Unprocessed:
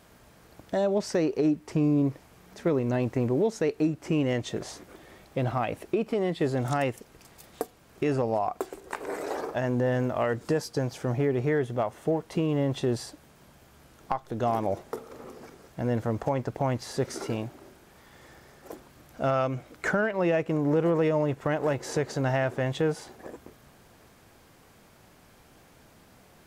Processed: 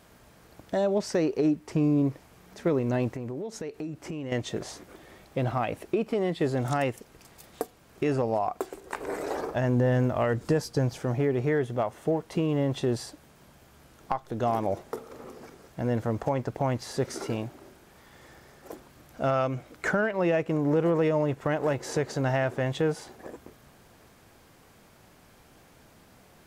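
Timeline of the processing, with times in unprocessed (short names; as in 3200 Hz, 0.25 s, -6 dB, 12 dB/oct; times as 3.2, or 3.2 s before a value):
3.14–4.32 compressor, threshold -32 dBFS
8.95–11 low shelf 140 Hz +9 dB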